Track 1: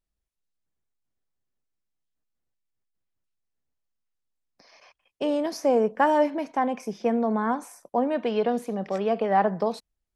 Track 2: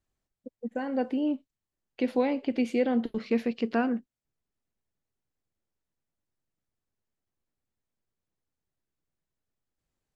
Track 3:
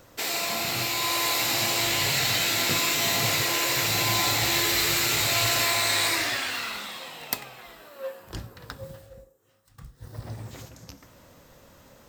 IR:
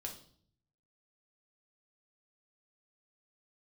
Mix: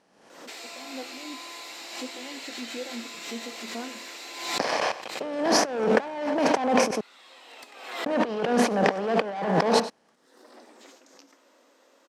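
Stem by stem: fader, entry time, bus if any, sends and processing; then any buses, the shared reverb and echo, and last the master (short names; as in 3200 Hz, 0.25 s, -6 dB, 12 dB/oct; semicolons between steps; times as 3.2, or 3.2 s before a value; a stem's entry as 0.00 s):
-4.0 dB, 0.00 s, muted 6.91–8.06, no send, echo send -15 dB, per-bin compression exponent 0.6; sample leveller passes 3
-18.5 dB, 0.00 s, send -7.5 dB, no echo send, endless flanger 3.3 ms +2.8 Hz
-12.0 dB, 0.30 s, no send, no echo send, steep high-pass 250 Hz 48 dB/oct; compressor, threshold -31 dBFS, peak gain reduction 10 dB; soft clip -26 dBFS, distortion -20 dB; auto duck -16 dB, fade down 0.25 s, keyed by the first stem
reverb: on, RT60 0.55 s, pre-delay 3 ms
echo: echo 99 ms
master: negative-ratio compressor -24 dBFS, ratio -0.5; BPF 140–7900 Hz; backwards sustainer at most 61 dB/s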